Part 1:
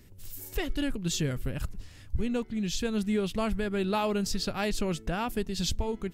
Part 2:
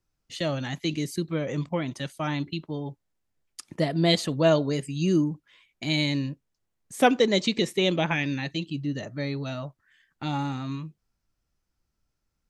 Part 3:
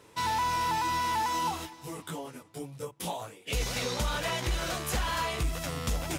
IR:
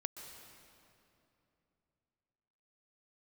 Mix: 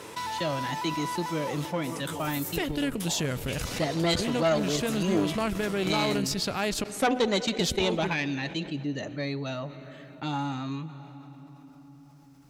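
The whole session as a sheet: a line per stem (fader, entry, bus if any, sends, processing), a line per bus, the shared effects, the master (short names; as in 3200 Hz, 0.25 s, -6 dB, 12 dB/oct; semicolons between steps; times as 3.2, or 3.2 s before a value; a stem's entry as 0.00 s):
-2.0 dB, 2.00 s, muted 6.84–7.59, send -13 dB, dry
+0.5 dB, 0.00 s, send -13.5 dB, de-hum 249 Hz, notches 3; upward expander 1.5:1, over -43 dBFS
-7.0 dB, 0.00 s, send -3 dB, compressor 3:1, threshold -38 dBFS, peak gain reduction 9.5 dB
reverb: on, RT60 2.9 s, pre-delay 0.116 s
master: tube stage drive 17 dB, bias 0.75; HPF 150 Hz 6 dB/oct; fast leveller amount 50%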